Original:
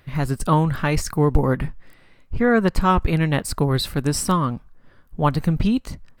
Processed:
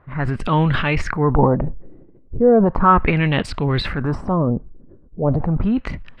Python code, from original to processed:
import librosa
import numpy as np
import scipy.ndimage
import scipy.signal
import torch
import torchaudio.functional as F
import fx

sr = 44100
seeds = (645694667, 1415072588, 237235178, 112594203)

y = fx.transient(x, sr, attack_db=-5, sustain_db=9)
y = fx.filter_lfo_lowpass(y, sr, shape='sine', hz=0.36, low_hz=350.0, high_hz=3100.0, q=2.4)
y = y * librosa.db_to_amplitude(1.0)